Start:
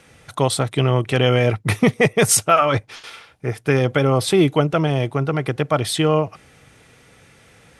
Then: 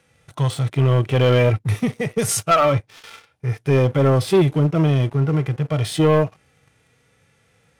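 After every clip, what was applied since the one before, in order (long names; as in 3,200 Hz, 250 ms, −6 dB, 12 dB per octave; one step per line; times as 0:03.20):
harmonic and percussive parts rebalanced percussive −17 dB
leveller curve on the samples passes 2
level −2.5 dB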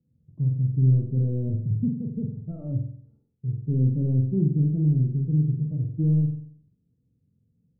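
transistor ladder low-pass 270 Hz, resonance 40%
on a send: flutter between parallel walls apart 7.9 metres, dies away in 0.61 s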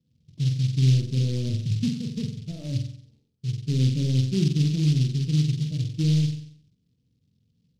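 short delay modulated by noise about 3,900 Hz, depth 0.11 ms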